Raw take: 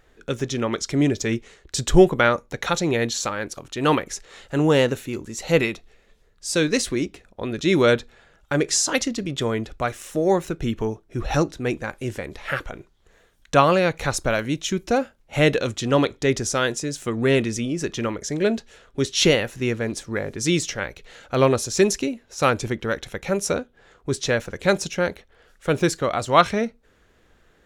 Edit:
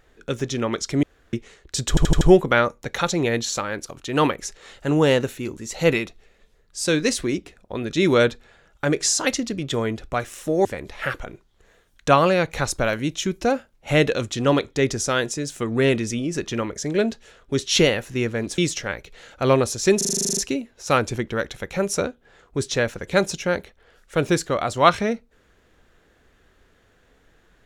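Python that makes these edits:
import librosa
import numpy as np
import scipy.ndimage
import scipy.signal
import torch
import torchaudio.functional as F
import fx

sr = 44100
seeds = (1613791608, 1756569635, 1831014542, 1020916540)

y = fx.edit(x, sr, fx.room_tone_fill(start_s=1.03, length_s=0.3),
    fx.stutter(start_s=1.89, slice_s=0.08, count=5),
    fx.cut(start_s=10.33, length_s=1.78),
    fx.cut(start_s=20.04, length_s=0.46),
    fx.stutter(start_s=21.89, slice_s=0.04, count=11), tone=tone)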